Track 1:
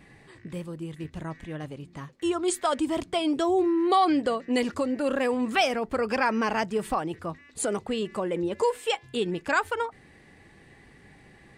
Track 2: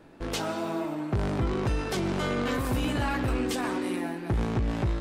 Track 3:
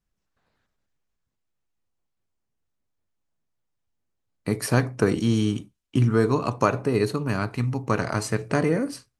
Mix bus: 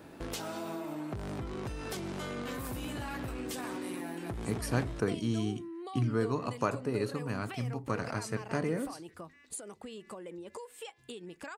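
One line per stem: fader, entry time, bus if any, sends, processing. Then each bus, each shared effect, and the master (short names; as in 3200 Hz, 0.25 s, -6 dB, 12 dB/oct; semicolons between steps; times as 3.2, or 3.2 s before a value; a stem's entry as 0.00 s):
-7.5 dB, 1.95 s, bus A, no send, bell 110 Hz -7 dB; compressor 12:1, threshold -33 dBFS, peak gain reduction 16 dB
+2.0 dB, 0.00 s, bus A, no send, compressor, threshold -30 dBFS, peak gain reduction 7 dB
-10.0 dB, 0.00 s, no bus, no send, dry
bus A: 0.0 dB, high shelf 7900 Hz +11 dB; compressor 2.5:1, threshold -39 dBFS, peak gain reduction 8.5 dB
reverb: off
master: HPF 43 Hz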